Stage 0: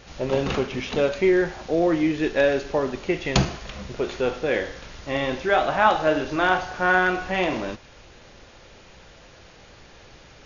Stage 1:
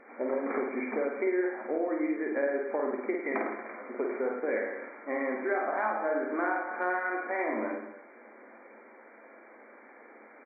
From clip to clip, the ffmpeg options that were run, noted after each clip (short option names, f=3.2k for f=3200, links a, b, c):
-filter_complex "[0:a]afftfilt=real='re*between(b*sr/4096,210,2400)':imag='im*between(b*sr/4096,210,2400)':win_size=4096:overlap=0.75,acompressor=threshold=-25dB:ratio=6,asplit=2[a][b];[b]aecho=0:1:50|105|165.5|232|305.3:0.631|0.398|0.251|0.158|0.1[c];[a][c]amix=inputs=2:normalize=0,volume=-3.5dB"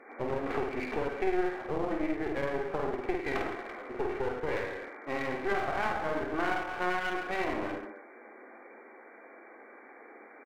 -af "highpass=160,aecho=1:1:2.6:0.31,aeval=exprs='clip(val(0),-1,0.00944)':c=same,volume=1dB"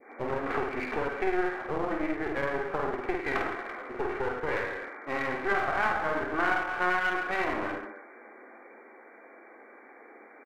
-af "adynamicequalizer=threshold=0.00501:dfrequency=1400:dqfactor=1.1:tfrequency=1400:tqfactor=1.1:attack=5:release=100:ratio=0.375:range=3.5:mode=boostabove:tftype=bell"